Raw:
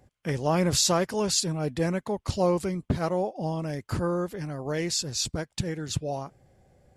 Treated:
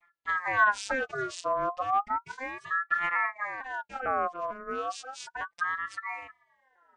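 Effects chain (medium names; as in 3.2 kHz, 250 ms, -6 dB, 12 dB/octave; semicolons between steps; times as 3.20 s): vocoder on a broken chord minor triad, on F3, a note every 450 ms; time-frequency box 1.76–2.96 s, 370–740 Hz -15 dB; ring modulator with a swept carrier 1.2 kHz, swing 30%, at 0.33 Hz; trim +1 dB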